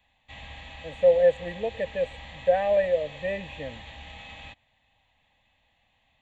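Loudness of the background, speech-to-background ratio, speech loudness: -43.0 LUFS, 17.5 dB, -25.5 LUFS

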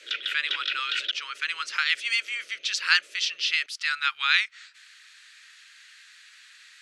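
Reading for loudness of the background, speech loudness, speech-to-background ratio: -29.5 LUFS, -26.0 LUFS, 3.5 dB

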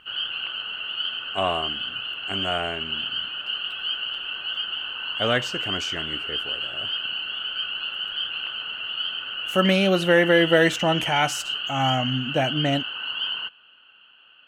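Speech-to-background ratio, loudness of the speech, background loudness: 3.5 dB, -23.5 LUFS, -27.0 LUFS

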